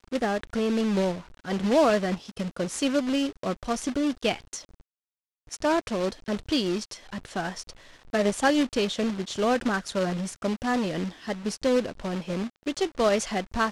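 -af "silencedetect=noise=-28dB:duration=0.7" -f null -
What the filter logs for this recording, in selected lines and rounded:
silence_start: 4.56
silence_end: 5.53 | silence_duration: 0.97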